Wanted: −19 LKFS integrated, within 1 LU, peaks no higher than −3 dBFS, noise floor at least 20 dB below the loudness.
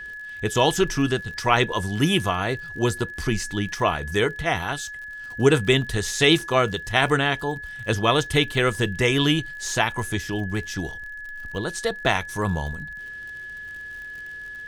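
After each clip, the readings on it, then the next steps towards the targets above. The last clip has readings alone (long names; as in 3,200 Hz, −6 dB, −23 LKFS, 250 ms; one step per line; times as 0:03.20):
crackle rate 57 per second; interfering tone 1,700 Hz; level of the tone −34 dBFS; integrated loudness −23.0 LKFS; sample peak −3.0 dBFS; target loudness −19.0 LKFS
→ click removal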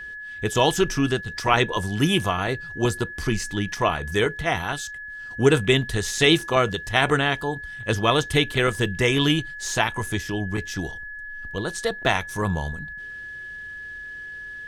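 crackle rate 0.61 per second; interfering tone 1,700 Hz; level of the tone −34 dBFS
→ notch filter 1,700 Hz, Q 30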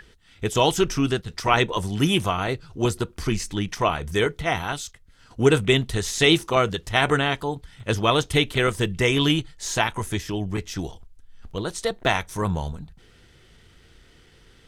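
interfering tone none found; integrated loudness −23.5 LKFS; sample peak −3.0 dBFS; target loudness −19.0 LKFS
→ level +4.5 dB
brickwall limiter −3 dBFS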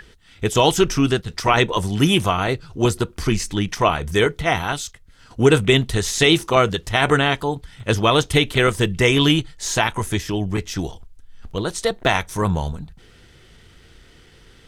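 integrated loudness −19.5 LKFS; sample peak −3.0 dBFS; background noise floor −50 dBFS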